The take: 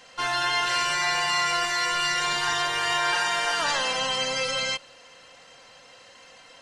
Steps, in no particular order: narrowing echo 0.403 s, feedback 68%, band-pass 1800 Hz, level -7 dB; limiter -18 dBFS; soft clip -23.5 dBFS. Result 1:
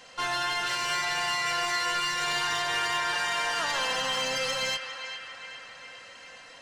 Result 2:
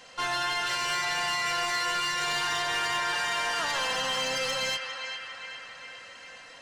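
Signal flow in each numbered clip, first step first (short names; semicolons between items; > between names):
limiter > soft clip > narrowing echo; limiter > narrowing echo > soft clip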